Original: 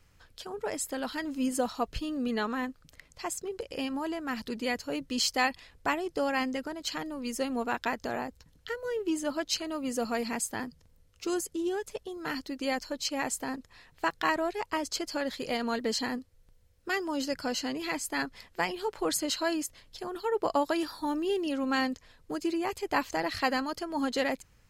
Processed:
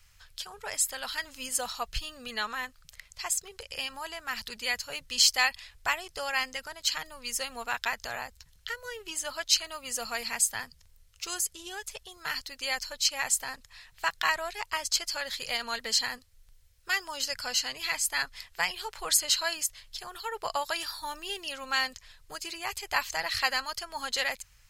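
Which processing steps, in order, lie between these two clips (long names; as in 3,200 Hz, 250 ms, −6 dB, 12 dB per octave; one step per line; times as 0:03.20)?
guitar amp tone stack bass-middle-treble 10-0-10
level +8.5 dB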